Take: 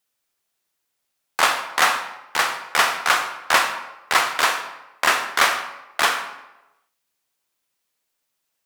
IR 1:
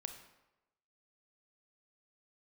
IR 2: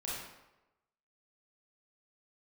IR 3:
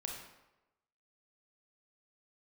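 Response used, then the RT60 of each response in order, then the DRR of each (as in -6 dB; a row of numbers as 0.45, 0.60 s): 1; 1.0, 1.0, 1.0 s; 6.5, -7.0, 0.0 dB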